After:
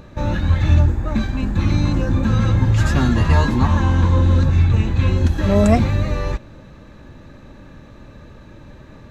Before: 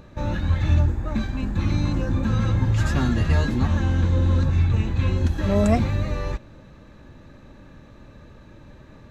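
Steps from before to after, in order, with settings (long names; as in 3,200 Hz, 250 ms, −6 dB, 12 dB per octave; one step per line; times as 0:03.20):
0:03.15–0:04.22: parametric band 990 Hz +11.5 dB 0.33 octaves
level +5 dB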